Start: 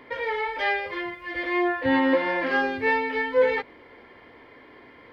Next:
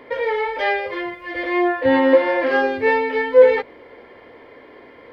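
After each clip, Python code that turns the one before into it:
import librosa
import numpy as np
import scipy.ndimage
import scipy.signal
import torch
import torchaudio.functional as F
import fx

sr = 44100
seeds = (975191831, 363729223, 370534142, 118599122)

y = fx.peak_eq(x, sr, hz=520.0, db=7.5, octaves=0.92)
y = fx.hum_notches(y, sr, base_hz=60, count=3)
y = y * 10.0 ** (2.5 / 20.0)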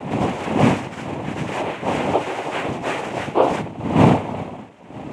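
y = fx.dmg_wind(x, sr, seeds[0], corner_hz=330.0, level_db=-14.0)
y = fx.noise_vocoder(y, sr, seeds[1], bands=4)
y = y * 10.0 ** (-7.0 / 20.0)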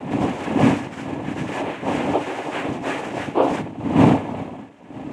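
y = fx.small_body(x, sr, hz=(280.0, 1700.0), ring_ms=45, db=7)
y = y * 10.0 ** (-2.5 / 20.0)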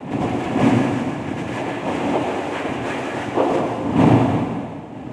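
y = fx.rev_plate(x, sr, seeds[2], rt60_s=1.8, hf_ratio=0.95, predelay_ms=80, drr_db=1.0)
y = y * 10.0 ** (-1.0 / 20.0)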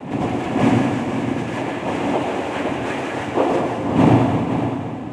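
y = x + 10.0 ** (-8.5 / 20.0) * np.pad(x, (int(513 * sr / 1000.0), 0))[:len(x)]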